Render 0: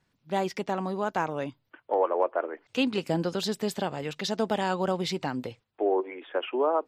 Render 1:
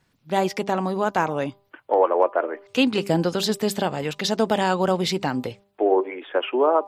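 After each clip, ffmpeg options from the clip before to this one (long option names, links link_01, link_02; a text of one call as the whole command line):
ffmpeg -i in.wav -af "equalizer=frequency=12000:width=0.9:gain=4,bandreject=frequency=199.3:width_type=h:width=4,bandreject=frequency=398.6:width_type=h:width=4,bandreject=frequency=597.9:width_type=h:width=4,bandreject=frequency=797.2:width_type=h:width=4,bandreject=frequency=996.5:width_type=h:width=4,bandreject=frequency=1195.8:width_type=h:width=4,volume=6.5dB" out.wav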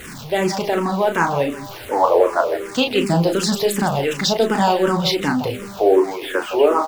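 ffmpeg -i in.wav -filter_complex "[0:a]aeval=exprs='val(0)+0.5*0.0237*sgn(val(0))':channel_layout=same,aecho=1:1:34.99|163.3:0.501|0.282,asplit=2[link_01][link_02];[link_02]afreqshift=-2.7[link_03];[link_01][link_03]amix=inputs=2:normalize=1,volume=5.5dB" out.wav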